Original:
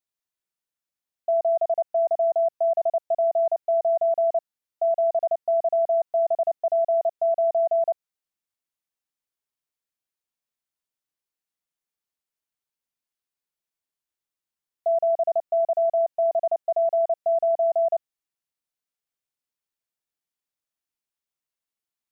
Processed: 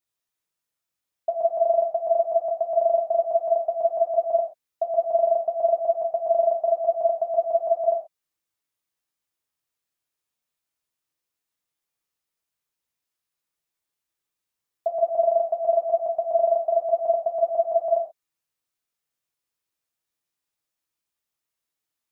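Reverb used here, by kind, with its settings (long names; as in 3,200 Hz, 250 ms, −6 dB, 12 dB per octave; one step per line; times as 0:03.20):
reverb whose tail is shaped and stops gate 160 ms falling, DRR −0.5 dB
level +1.5 dB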